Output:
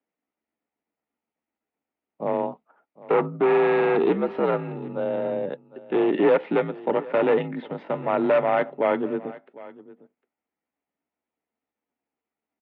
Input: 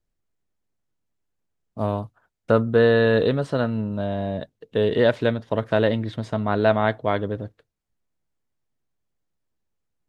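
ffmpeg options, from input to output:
-af "acontrast=77,afreqshift=-71,atempo=0.8,asoftclip=type=hard:threshold=0.316,highpass=f=250:w=0.5412,highpass=f=250:w=1.3066,equalizer=f=370:t=q:w=4:g=-8,equalizer=f=560:t=q:w=4:g=-6,equalizer=f=1100:t=q:w=4:g=-7,equalizer=f=1600:t=q:w=4:g=-10,lowpass=f=2200:w=0.5412,lowpass=f=2200:w=1.3066,aecho=1:1:755:0.106,volume=1.19"

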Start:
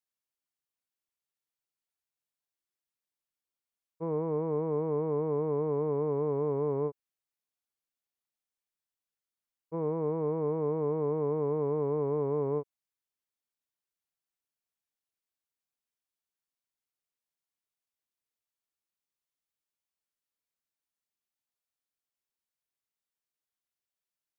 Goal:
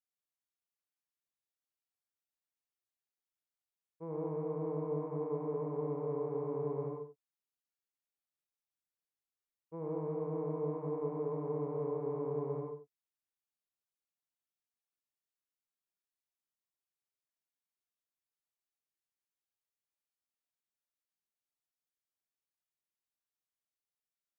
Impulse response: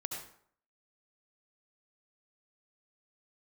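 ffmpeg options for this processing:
-filter_complex "[1:a]atrim=start_sample=2205,afade=t=out:st=0.28:d=0.01,atrim=end_sample=12789,asetrate=42777,aresample=44100[s0];[0:a][s0]afir=irnorm=-1:irlink=0,volume=0.422"

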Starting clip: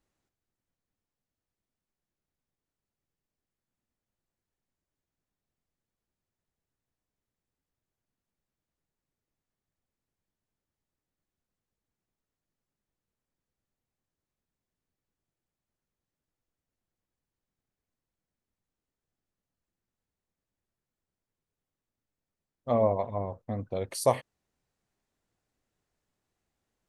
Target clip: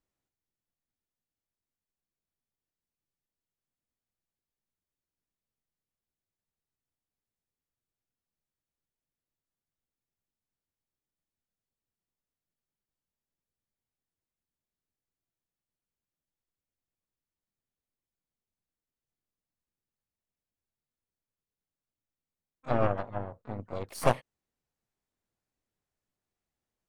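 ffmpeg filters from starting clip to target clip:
-filter_complex "[0:a]aeval=exprs='0.299*(cos(1*acos(clip(val(0)/0.299,-1,1)))-cos(1*PI/2))+0.0596*(cos(3*acos(clip(val(0)/0.299,-1,1)))-cos(3*PI/2))+0.0531*(cos(4*acos(clip(val(0)/0.299,-1,1)))-cos(4*PI/2))':c=same,asplit=3[s0][s1][s2];[s1]asetrate=52444,aresample=44100,atempo=0.840896,volume=0.398[s3];[s2]asetrate=88200,aresample=44100,atempo=0.5,volume=0.141[s4];[s0][s3][s4]amix=inputs=3:normalize=0"

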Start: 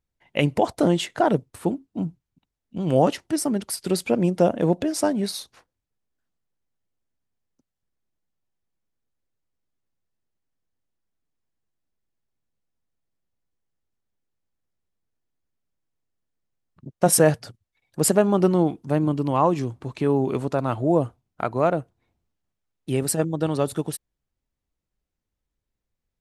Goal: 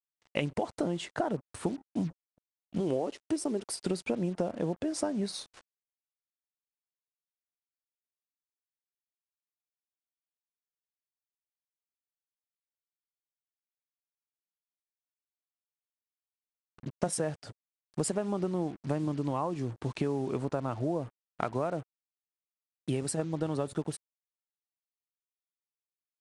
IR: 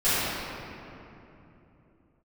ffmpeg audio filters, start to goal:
-filter_complex "[0:a]asettb=1/sr,asplit=3[s0][s1][s2];[s0]atrim=end=2.804[s3];[s1]atrim=start=2.8:end=3.81,asetpts=PTS-STARTPTS,afade=t=in:d=0.004:c=qsin,afade=t=out:st=1.006:d=0.004:c=qsin,equalizer=f=160:t=o:w=0.67:g=-9,equalizer=f=400:t=o:w=0.67:g=8,equalizer=f=1600:t=o:w=0.67:g=-5[s4];[s2]atrim=start=3.806[s5];[s3][s4]acrossfade=d=0.004:c1=hsin:c2=qsin[s6];[s6][s5]acrossfade=d=0.004:c1=qsin:c2=hsin,acompressor=threshold=0.0447:ratio=16,acrusher=bits=7:mix=0:aa=0.5,aresample=22050,aresample=44100,adynamicequalizer=threshold=0.00398:dfrequency=1800:dqfactor=0.7:tfrequency=1800:tqfactor=0.7:attack=5:release=100:ratio=0.375:range=2.5:mode=cutabove:tftype=highshelf"

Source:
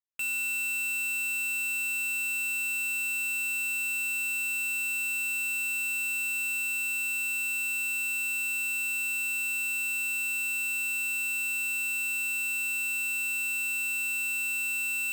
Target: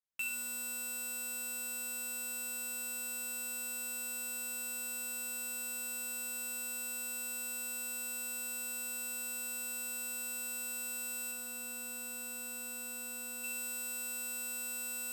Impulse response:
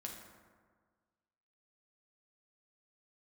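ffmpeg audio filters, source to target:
-filter_complex "[0:a]asettb=1/sr,asplit=3[s0][s1][s2];[s0]atrim=end=11.314[s3];[s1]atrim=start=11.31:end=13.44,asetpts=PTS-STARTPTS,afade=t=in:d=0.004:c=qsin,afade=t=out:st=2.126:d=0.004:c=qsin,tiltshelf=f=810:g=3[s4];[s2]atrim=start=13.436[s5];[s3][s4]acrossfade=d=0.004:c1=hsin:c2=qsin[s6];[s6][s5]acrossfade=d=0.004:c1=qsin:c2=hsin[s7];[1:a]atrim=start_sample=2205,asetrate=34839,aresample=44100[s8];[s7][s8]afir=irnorm=-1:irlink=0"

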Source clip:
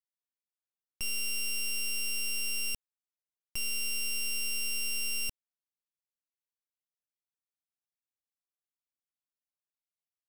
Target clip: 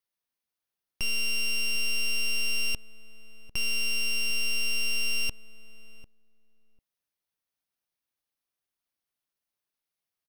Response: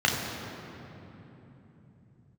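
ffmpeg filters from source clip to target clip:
-filter_complex "[0:a]equalizer=f=7400:w=6.9:g=-12,asplit=2[s0][s1];[s1]adelay=747,lowpass=f=830:p=1,volume=0.188,asplit=2[s2][s3];[s3]adelay=747,lowpass=f=830:p=1,volume=0.16[s4];[s0][s2][s4]amix=inputs=3:normalize=0,acrossover=split=7100[s5][s6];[s6]acompressor=threshold=0.00447:ratio=4:attack=1:release=60[s7];[s5][s7]amix=inputs=2:normalize=0,volume=2.24"

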